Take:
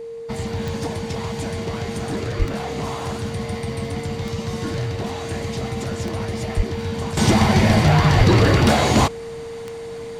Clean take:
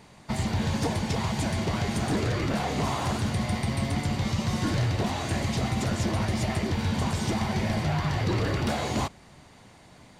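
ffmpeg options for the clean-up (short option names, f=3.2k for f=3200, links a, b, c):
-filter_complex "[0:a]adeclick=t=4,bandreject=f=460:w=30,asplit=3[a][b][c];[a]afade=t=out:st=2.38:d=0.02[d];[b]highpass=f=140:w=0.5412,highpass=f=140:w=1.3066,afade=t=in:st=2.38:d=0.02,afade=t=out:st=2.5:d=0.02[e];[c]afade=t=in:st=2.5:d=0.02[f];[d][e][f]amix=inputs=3:normalize=0,asplit=3[g][h][i];[g]afade=t=out:st=6.56:d=0.02[j];[h]highpass=f=140:w=0.5412,highpass=f=140:w=1.3066,afade=t=in:st=6.56:d=0.02,afade=t=out:st=6.68:d=0.02[k];[i]afade=t=in:st=6.68:d=0.02[l];[j][k][l]amix=inputs=3:normalize=0,asplit=3[m][n][o];[m]afade=t=out:st=8.17:d=0.02[p];[n]highpass=f=140:w=0.5412,highpass=f=140:w=1.3066,afade=t=in:st=8.17:d=0.02,afade=t=out:st=8.29:d=0.02[q];[o]afade=t=in:st=8.29:d=0.02[r];[p][q][r]amix=inputs=3:normalize=0,asetnsamples=n=441:p=0,asendcmd='7.17 volume volume -12dB',volume=0dB"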